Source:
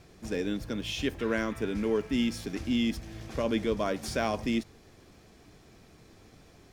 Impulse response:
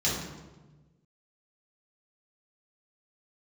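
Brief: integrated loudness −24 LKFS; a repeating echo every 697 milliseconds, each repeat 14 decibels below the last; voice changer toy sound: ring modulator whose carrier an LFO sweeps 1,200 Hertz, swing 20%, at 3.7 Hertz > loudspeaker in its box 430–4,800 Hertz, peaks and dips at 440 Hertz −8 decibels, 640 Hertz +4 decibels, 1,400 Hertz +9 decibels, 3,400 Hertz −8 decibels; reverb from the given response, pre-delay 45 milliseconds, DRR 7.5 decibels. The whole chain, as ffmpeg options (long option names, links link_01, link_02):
-filter_complex "[0:a]aecho=1:1:697|1394:0.2|0.0399,asplit=2[link_01][link_02];[1:a]atrim=start_sample=2205,adelay=45[link_03];[link_02][link_03]afir=irnorm=-1:irlink=0,volume=-17.5dB[link_04];[link_01][link_04]amix=inputs=2:normalize=0,aeval=exprs='val(0)*sin(2*PI*1200*n/s+1200*0.2/3.7*sin(2*PI*3.7*n/s))':channel_layout=same,highpass=430,equalizer=frequency=440:width_type=q:width=4:gain=-8,equalizer=frequency=640:width_type=q:width=4:gain=4,equalizer=frequency=1400:width_type=q:width=4:gain=9,equalizer=frequency=3400:width_type=q:width=4:gain=-8,lowpass=frequency=4800:width=0.5412,lowpass=frequency=4800:width=1.3066,volume=3dB"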